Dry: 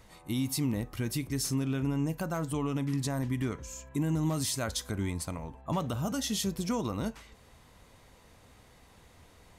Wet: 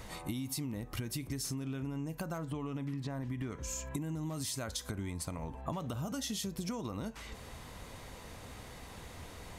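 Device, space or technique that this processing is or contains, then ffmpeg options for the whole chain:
serial compression, leveller first: -filter_complex "[0:a]asettb=1/sr,asplit=3[link_01][link_02][link_03];[link_01]atrim=end=2.384[link_04];[link_02]atrim=start=2.38:end=3.5,asetpts=PTS-STARTPTS,afade=type=in:duration=0.004:curve=qsin,afade=type=out:start_time=1.116:duration=0.004:curve=qsin,acrossover=split=3900[link_05][link_06];[link_06]acompressor=threshold=-58dB:ratio=4:attack=1:release=60[link_07];[link_05][link_07]amix=inputs=2:normalize=0[link_08];[link_03]atrim=start=3.496[link_09];[link_04][link_08]acrossfade=duration=0.004:curve1=hsin:curve2=qsin[link_10];[link_10][link_09]acrossfade=duration=0.004:curve1=qsin:curve2=hsin,acompressor=threshold=-35dB:ratio=2.5,acompressor=threshold=-45dB:ratio=5,volume=9dB"

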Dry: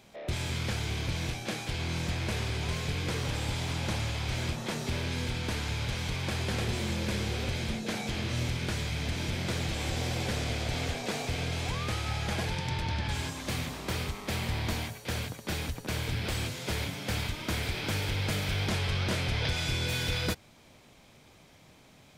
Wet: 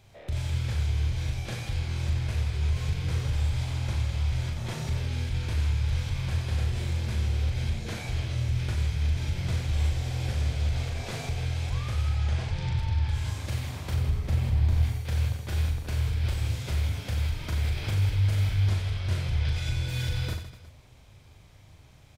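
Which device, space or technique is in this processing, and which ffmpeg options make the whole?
car stereo with a boomy subwoofer: -filter_complex "[0:a]lowshelf=frequency=140:width_type=q:width=1.5:gain=12,alimiter=limit=-18dB:level=0:latency=1:release=83,asettb=1/sr,asplit=3[link_01][link_02][link_03];[link_01]atrim=end=12.154[link_04];[link_02]atrim=start=12.15:end=12.72,asetpts=PTS-STARTPTS,afade=type=in:duration=0.004:curve=qsin,afade=type=out:start_time=0.566:duration=0.004:curve=qsin,lowpass=7300[link_05];[link_03]atrim=start=12.716[link_06];[link_04][link_05]acrossfade=duration=0.004:curve1=hsin:curve2=qsin[link_07];[link_07][link_06]acrossfade=duration=0.004:curve1=qsin:curve2=hsin,asettb=1/sr,asplit=3[link_08][link_09][link_10];[link_08]atrim=end=13.944[link_11];[link_09]atrim=start=13.94:end=14.83,asetpts=PTS-STARTPTS,afade=type=in:duration=0.004:curve=qsin,afade=type=out:start_time=0.886:duration=0.004:curve=qsin,tiltshelf=frequency=650:gain=4.5[link_12];[link_10]atrim=start=14.826[link_13];[link_11][link_12]acrossfade=duration=0.004:curve1=hsin:curve2=qsin[link_14];[link_14][link_13]acrossfade=duration=0.004:curve1=qsin:curve2=hsin,aecho=1:1:40|92|159.6|247.5|361.7:0.631|0.398|0.251|0.158|0.1,volume=-4.5dB"

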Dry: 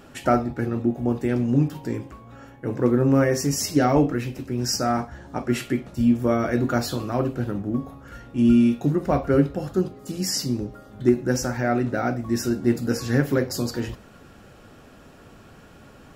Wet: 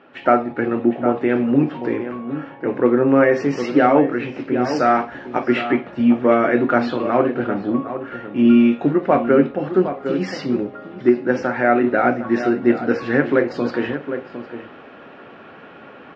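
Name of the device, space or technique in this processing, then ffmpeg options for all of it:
action camera in a waterproof case: -filter_complex "[0:a]asettb=1/sr,asplit=3[link_01][link_02][link_03];[link_01]atrim=end=4.764[link_04];[link_02]atrim=start=4.76:end=5.45,asetpts=PTS-STARTPTS,afade=type=in:duration=0.004:curve=qsin,afade=type=out:start_time=0.686:duration=0.004:curve=qsin,aemphasis=mode=production:type=75fm[link_05];[link_03]atrim=start=5.446[link_06];[link_04][link_05]acrossfade=duration=0.004:curve1=hsin:curve2=qsin[link_07];[link_07][link_06]acrossfade=duration=0.004:curve1=qsin:curve2=hsin,highpass=290,lowpass=frequency=2700:width=0.5412,lowpass=frequency=2700:width=1.3066,highshelf=frequency=3200:gain=5.5,asplit=2[link_08][link_09];[link_09]adelay=758,volume=-11dB,highshelf=frequency=4000:gain=-17.1[link_10];[link_08][link_10]amix=inputs=2:normalize=0,dynaudnorm=framelen=120:gausssize=3:maxgain=9.5dB" -ar 32000 -c:a aac -b:a 48k

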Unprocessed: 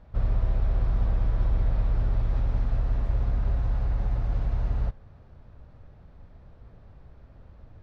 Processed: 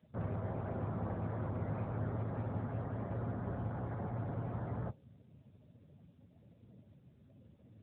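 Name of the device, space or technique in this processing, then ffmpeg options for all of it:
mobile call with aggressive noise cancelling: -af "highpass=120,afftdn=noise_reduction=19:noise_floor=-50" -ar 8000 -c:a libopencore_amrnb -b:a 10200

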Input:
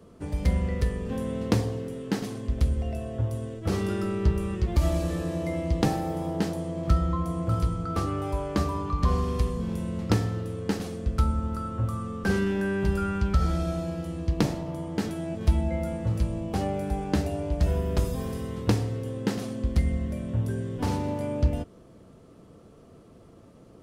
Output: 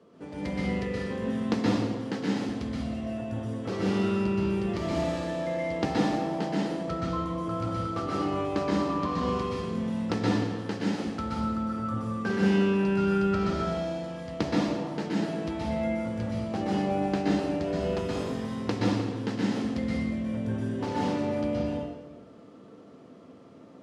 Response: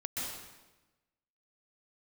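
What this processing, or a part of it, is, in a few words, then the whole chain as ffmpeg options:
supermarket ceiling speaker: -filter_complex "[0:a]highpass=220,lowpass=5100[link_01];[1:a]atrim=start_sample=2205[link_02];[link_01][link_02]afir=irnorm=-1:irlink=0"

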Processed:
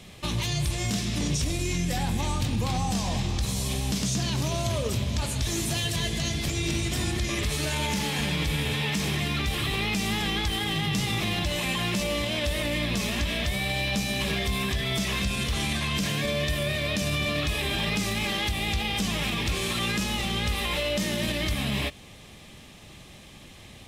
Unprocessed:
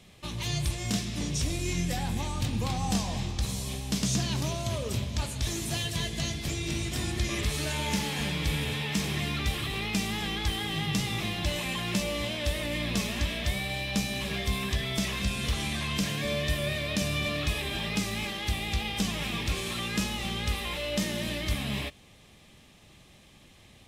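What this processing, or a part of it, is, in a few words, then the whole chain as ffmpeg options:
stacked limiters: -af "alimiter=limit=-22dB:level=0:latency=1:release=339,alimiter=level_in=2.5dB:limit=-24dB:level=0:latency=1,volume=-2.5dB,volume=8dB"

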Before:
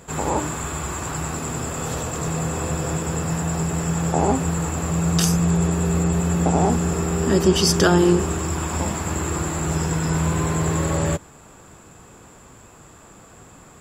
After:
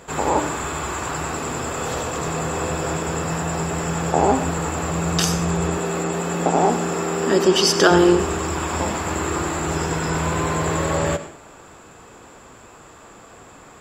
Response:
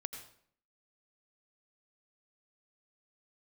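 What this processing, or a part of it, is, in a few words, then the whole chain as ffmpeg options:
filtered reverb send: -filter_complex "[0:a]asplit=2[link_01][link_02];[link_02]highpass=250,lowpass=6600[link_03];[1:a]atrim=start_sample=2205[link_04];[link_03][link_04]afir=irnorm=-1:irlink=0,volume=2.5dB[link_05];[link_01][link_05]amix=inputs=2:normalize=0,asettb=1/sr,asplit=3[link_06][link_07][link_08];[link_06]atrim=end=5.774[link_09];[link_07]atrim=start=5.77:end=7.91,asetpts=PTS-STARTPTS,afade=type=in:duration=0.004:curve=qsin,afade=type=out:start_time=2.136:duration=0.004:curve=qsin,highpass=200[link_10];[link_08]atrim=start=7.906[link_11];[link_09][link_10]acrossfade=duration=0.004:curve1=hsin:curve2=qsin[link_12];[link_12][link_11]acrossfade=duration=0.004:curve1=qsin:curve2=hsin,volume=-2dB"

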